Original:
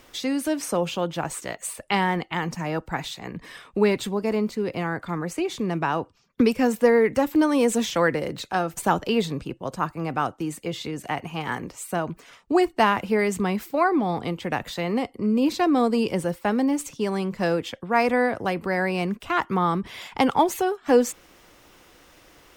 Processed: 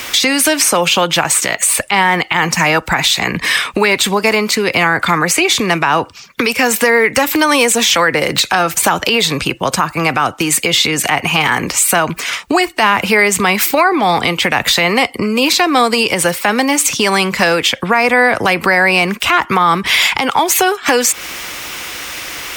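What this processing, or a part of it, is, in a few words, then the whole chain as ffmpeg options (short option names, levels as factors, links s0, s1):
mastering chain: -filter_complex "[0:a]highpass=42,equalizer=f=560:t=o:w=2.1:g=-4,equalizer=f=2300:t=o:w=0.32:g=4,acrossover=split=430|1100[s0][s1][s2];[s0]acompressor=threshold=0.02:ratio=4[s3];[s1]acompressor=threshold=0.0355:ratio=4[s4];[s2]acompressor=threshold=0.0224:ratio=4[s5];[s3][s4][s5]amix=inputs=3:normalize=0,acompressor=threshold=0.0158:ratio=2.5,tiltshelf=f=660:g=-6,alimiter=level_in=18.8:limit=0.891:release=50:level=0:latency=1,volume=0.891"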